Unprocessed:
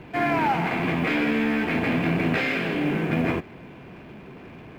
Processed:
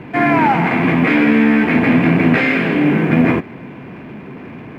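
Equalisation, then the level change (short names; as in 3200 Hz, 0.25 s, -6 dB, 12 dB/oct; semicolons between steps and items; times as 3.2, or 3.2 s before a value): ten-band EQ 125 Hz +7 dB, 250 Hz +10 dB, 500 Hz +4 dB, 1000 Hz +6 dB, 2000 Hz +8 dB; +1.0 dB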